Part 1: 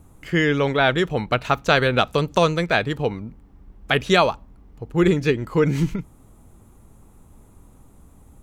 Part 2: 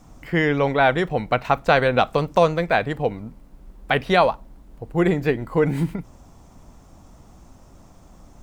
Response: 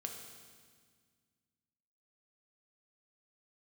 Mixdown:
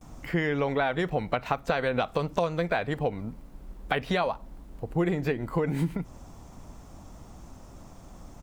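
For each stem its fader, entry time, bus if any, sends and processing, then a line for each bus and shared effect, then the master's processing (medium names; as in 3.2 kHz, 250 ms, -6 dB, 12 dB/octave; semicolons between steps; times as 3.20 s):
-18.5 dB, 0.00 s, no send, none
+1.0 dB, 12 ms, no send, compression, threshold -19 dBFS, peak gain reduction 8.5 dB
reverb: none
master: compression 1.5:1, threshold -31 dBFS, peak gain reduction 5.5 dB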